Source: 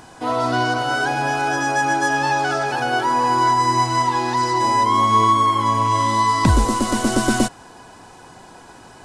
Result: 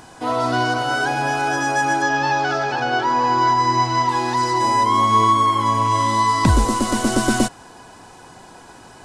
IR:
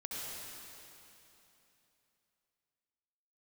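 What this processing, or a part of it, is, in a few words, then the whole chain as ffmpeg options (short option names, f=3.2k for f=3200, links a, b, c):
exciter from parts: -filter_complex "[0:a]asettb=1/sr,asplit=3[a][b][c];[a]atrim=end=2.024[d];[b]atrim=start=2.02:end=4.09,asetpts=PTS-STARTPTS,afade=t=in:d=0.004:c=qsin,afade=t=out:st=2.066:d=0.004:c=qsin,lowpass=f=6k:w=0.5412,lowpass=f=6k:w=1.3066[e];[c]atrim=start=4.086[f];[d][e]acrossfade=d=0.004:c1=hsin:c2=qsin[g];[g][f]acrossfade=d=0.004:c1=qsin:c2=hsin,asplit=2[h][i];[i]highpass=f=4.7k:p=1,asoftclip=type=tanh:threshold=-37.5dB,volume=-14dB[j];[h][j]amix=inputs=2:normalize=0"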